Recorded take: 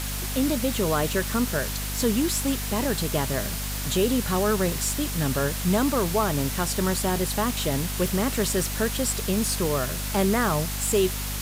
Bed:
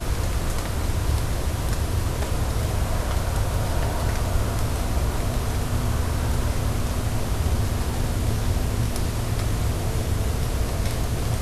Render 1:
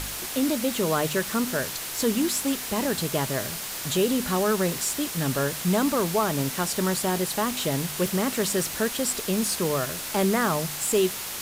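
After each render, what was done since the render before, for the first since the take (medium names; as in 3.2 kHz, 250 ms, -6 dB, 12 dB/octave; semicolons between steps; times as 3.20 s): de-hum 50 Hz, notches 5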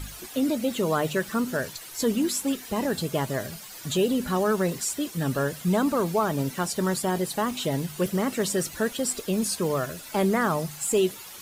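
noise reduction 13 dB, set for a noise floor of -34 dBFS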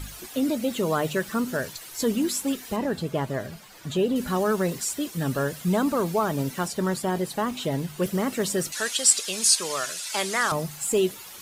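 2.76–4.16 s: treble shelf 4.1 kHz -11.5 dB; 6.68–8.03 s: treble shelf 4.3 kHz -5 dB; 8.72–10.52 s: frequency weighting ITU-R 468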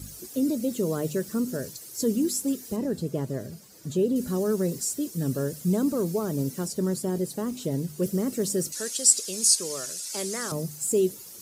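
high-pass 74 Hz; high-order bell 1.6 kHz -13 dB 2.8 oct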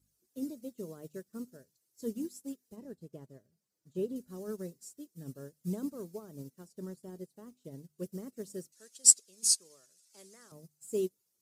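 upward expansion 2.5:1, over -38 dBFS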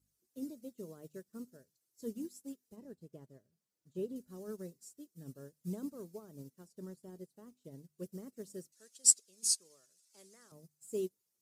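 trim -4.5 dB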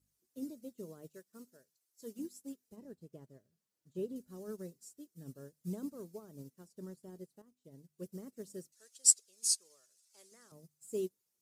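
1.09–2.19 s: bass shelf 360 Hz -11.5 dB; 7.42–8.14 s: fade in, from -13 dB; 8.75–10.32 s: peaking EQ 180 Hz -11.5 dB 1.7 oct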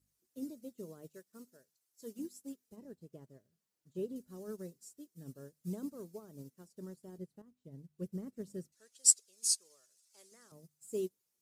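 7.18–8.98 s: tone controls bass +8 dB, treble -6 dB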